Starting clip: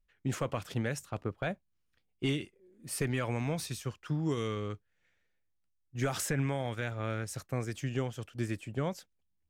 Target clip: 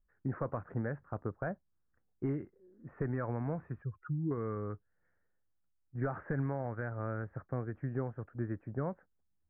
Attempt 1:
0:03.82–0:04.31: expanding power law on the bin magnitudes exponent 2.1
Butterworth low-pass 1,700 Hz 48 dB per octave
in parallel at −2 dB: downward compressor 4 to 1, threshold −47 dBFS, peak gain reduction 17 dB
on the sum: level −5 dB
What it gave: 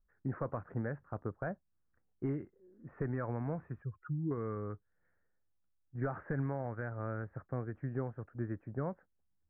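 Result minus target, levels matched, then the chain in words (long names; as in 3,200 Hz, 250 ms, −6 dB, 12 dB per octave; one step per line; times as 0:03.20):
downward compressor: peak gain reduction +7 dB
0:03.82–0:04.31: expanding power law on the bin magnitudes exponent 2.1
Butterworth low-pass 1,700 Hz 48 dB per octave
in parallel at −2 dB: downward compressor 4 to 1, threshold −38 dBFS, peak gain reduction 10 dB
on the sum: level −5 dB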